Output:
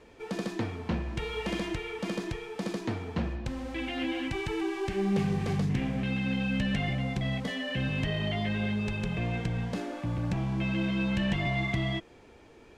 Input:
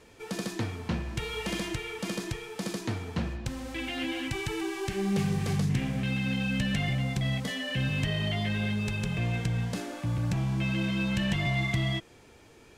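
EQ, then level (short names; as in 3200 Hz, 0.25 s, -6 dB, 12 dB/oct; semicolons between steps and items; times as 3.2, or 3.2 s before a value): LPF 2100 Hz 6 dB/oct; bell 120 Hz -6 dB 1 oct; bell 1400 Hz -2 dB; +2.5 dB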